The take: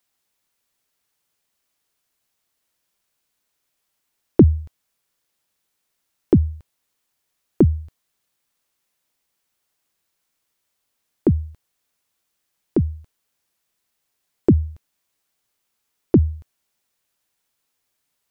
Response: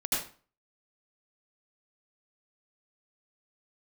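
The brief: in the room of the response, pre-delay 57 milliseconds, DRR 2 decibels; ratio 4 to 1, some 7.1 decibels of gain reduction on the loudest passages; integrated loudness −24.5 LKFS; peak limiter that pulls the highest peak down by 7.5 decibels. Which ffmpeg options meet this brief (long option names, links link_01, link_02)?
-filter_complex "[0:a]acompressor=threshold=-14dB:ratio=4,alimiter=limit=-9.5dB:level=0:latency=1,asplit=2[link_01][link_02];[1:a]atrim=start_sample=2205,adelay=57[link_03];[link_02][link_03]afir=irnorm=-1:irlink=0,volume=-9.5dB[link_04];[link_01][link_04]amix=inputs=2:normalize=0,volume=1dB"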